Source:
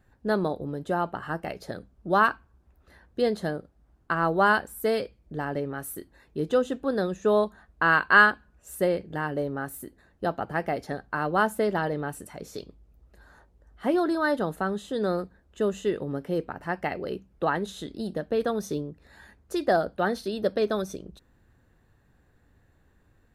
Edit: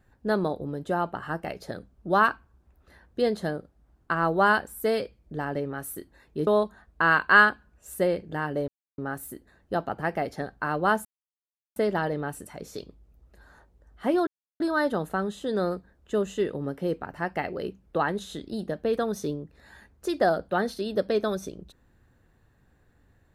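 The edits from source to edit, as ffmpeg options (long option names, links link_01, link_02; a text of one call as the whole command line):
ffmpeg -i in.wav -filter_complex "[0:a]asplit=5[link_01][link_02][link_03][link_04][link_05];[link_01]atrim=end=6.472[link_06];[link_02]atrim=start=7.278:end=9.49,asetpts=PTS-STARTPTS,afade=type=out:start_time=2.208:duration=0.004:curve=hsin,apad=pad_dur=0.3[link_07];[link_03]atrim=start=9.49:end=11.56,asetpts=PTS-STARTPTS,afade=type=in:duration=0.004:curve=hsin,afade=type=out:start_time=2.066:duration=0.004:curve=hsin,apad=pad_dur=0.71[link_08];[link_04]atrim=start=11.56:end=14.07,asetpts=PTS-STARTPTS,afade=type=in:duration=0.004:curve=hsin,afade=type=out:start_time=2.506:duration=0.004:curve=hsin,apad=pad_dur=0.33[link_09];[link_05]atrim=start=14.07,asetpts=PTS-STARTPTS,afade=type=in:duration=0.004:curve=hsin[link_10];[link_07][link_08][link_09][link_10]concat=n=4:v=0:a=1[link_11];[link_06][link_11]acrossfade=duration=0.004:curve1=hsin:curve2=hsin" out.wav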